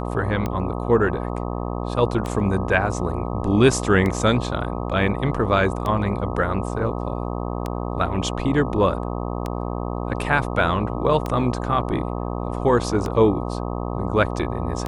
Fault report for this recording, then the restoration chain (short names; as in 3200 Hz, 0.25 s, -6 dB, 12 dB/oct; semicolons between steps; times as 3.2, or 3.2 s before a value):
buzz 60 Hz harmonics 21 -27 dBFS
tick 33 1/3 rpm -13 dBFS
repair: de-click; de-hum 60 Hz, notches 21